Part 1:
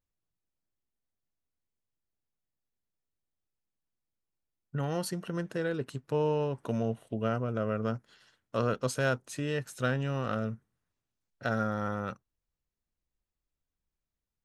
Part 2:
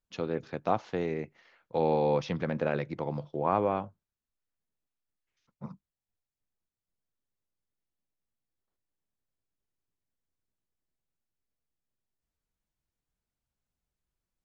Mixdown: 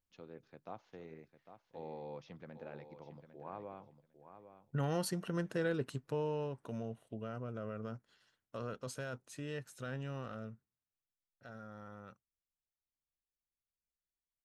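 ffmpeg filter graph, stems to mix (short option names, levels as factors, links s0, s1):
-filter_complex "[0:a]alimiter=limit=0.0794:level=0:latency=1:release=14,volume=0.75,afade=t=out:st=5.9:d=0.7:silence=0.421697,afade=t=out:st=10.12:d=0.74:silence=0.421697[s0];[1:a]volume=0.1,asplit=2[s1][s2];[s2]volume=0.299,aecho=0:1:802|1604|2406:1|0.16|0.0256[s3];[s0][s1][s3]amix=inputs=3:normalize=0"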